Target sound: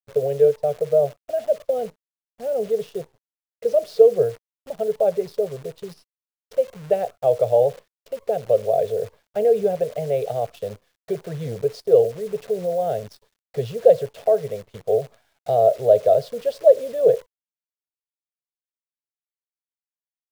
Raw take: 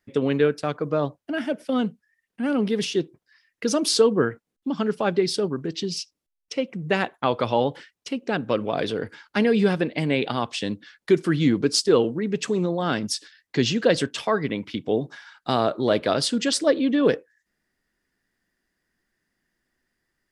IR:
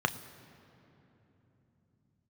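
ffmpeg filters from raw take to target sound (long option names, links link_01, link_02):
-af "firequalizer=gain_entry='entry(120,0);entry(300,-29);entry(430,5);entry(670,10);entry(970,-21);entry(2200,-18);entry(3800,-17);entry(6800,-26);entry(12000,-30)':delay=0.05:min_phase=1,acrusher=bits=8:dc=4:mix=0:aa=0.000001"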